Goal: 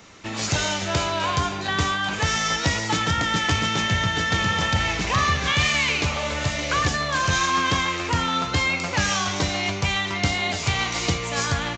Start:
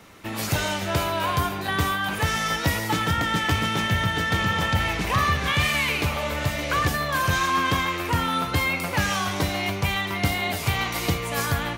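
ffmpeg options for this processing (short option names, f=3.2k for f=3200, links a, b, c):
-af "aresample=16000,aresample=44100,highshelf=f=5k:g=11"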